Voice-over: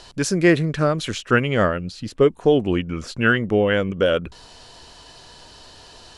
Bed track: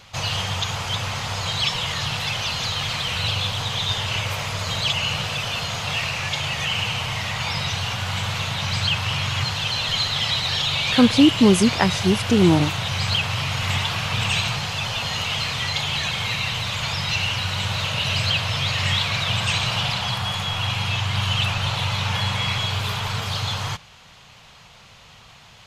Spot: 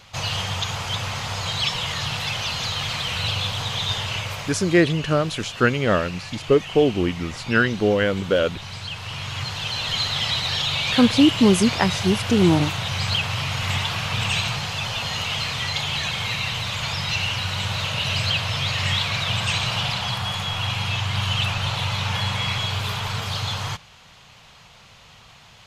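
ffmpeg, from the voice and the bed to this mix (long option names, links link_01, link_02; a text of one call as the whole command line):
ffmpeg -i stem1.wav -i stem2.wav -filter_complex "[0:a]adelay=4300,volume=-1dB[link_01];[1:a]volume=9dB,afade=type=out:start_time=3.94:duration=0.9:silence=0.316228,afade=type=in:start_time=8.9:duration=1.16:silence=0.316228[link_02];[link_01][link_02]amix=inputs=2:normalize=0" out.wav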